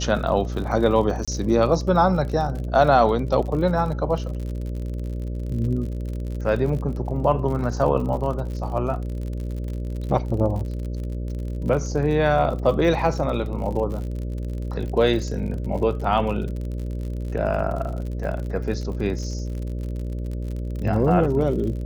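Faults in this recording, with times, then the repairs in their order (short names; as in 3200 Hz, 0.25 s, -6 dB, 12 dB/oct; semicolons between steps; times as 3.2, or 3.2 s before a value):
buzz 60 Hz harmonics 10 -28 dBFS
crackle 52/s -31 dBFS
1.25–1.28 gap 26 ms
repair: de-click; de-hum 60 Hz, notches 10; interpolate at 1.25, 26 ms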